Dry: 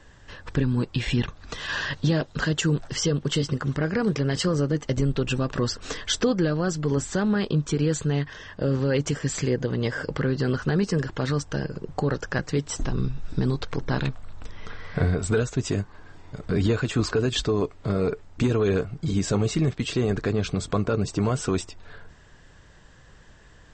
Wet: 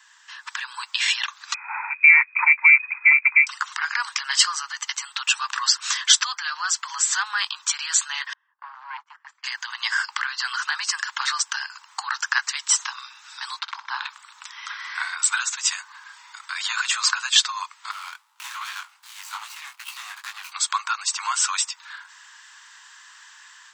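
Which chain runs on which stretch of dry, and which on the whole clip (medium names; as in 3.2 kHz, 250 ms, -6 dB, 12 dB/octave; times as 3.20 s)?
1.54–3.47 s: frequency inversion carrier 2.5 kHz + upward expansion, over -43 dBFS
8.33–9.44 s: gate -28 dBFS, range -24 dB + low-pass 1 kHz + valve stage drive 18 dB, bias 0.6
13.59–14.09 s: low-pass 3.2 kHz + dynamic bell 2.1 kHz, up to -8 dB, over -47 dBFS, Q 0.95 + flutter echo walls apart 10.5 m, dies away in 0.36 s
17.91–20.52 s: median filter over 25 samples + chorus 2.5 Hz, delay 16 ms, depth 7.3 ms
whole clip: steep high-pass 910 Hz 72 dB/octave; treble shelf 4.5 kHz +8.5 dB; level rider gain up to 7 dB; trim +1.5 dB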